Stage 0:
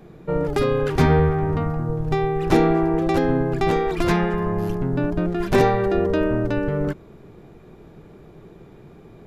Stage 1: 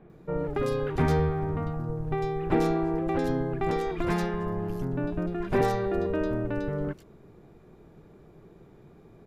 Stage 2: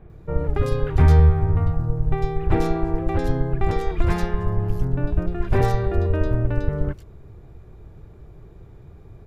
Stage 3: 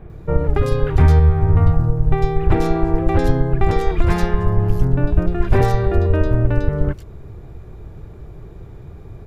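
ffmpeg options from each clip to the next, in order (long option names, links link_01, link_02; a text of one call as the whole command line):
ffmpeg -i in.wav -filter_complex "[0:a]acrossover=split=3000[link_01][link_02];[link_02]adelay=100[link_03];[link_01][link_03]amix=inputs=2:normalize=0,volume=-7.5dB" out.wav
ffmpeg -i in.wav -af "lowshelf=frequency=130:width_type=q:width=1.5:gain=13,volume=2.5dB" out.wav
ffmpeg -i in.wav -af "alimiter=limit=-11dB:level=0:latency=1:release=480,volume=7.5dB" out.wav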